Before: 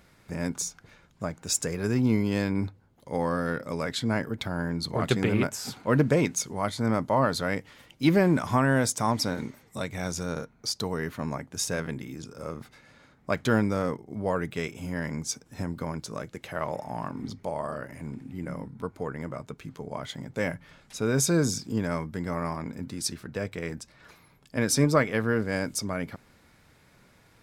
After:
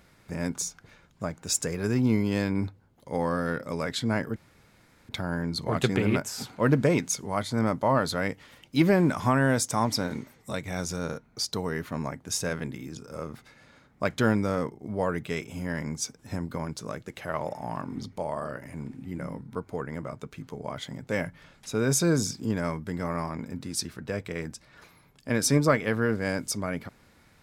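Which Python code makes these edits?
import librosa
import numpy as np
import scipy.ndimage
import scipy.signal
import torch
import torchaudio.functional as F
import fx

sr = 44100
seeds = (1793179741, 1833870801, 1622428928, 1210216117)

y = fx.edit(x, sr, fx.insert_room_tone(at_s=4.36, length_s=0.73), tone=tone)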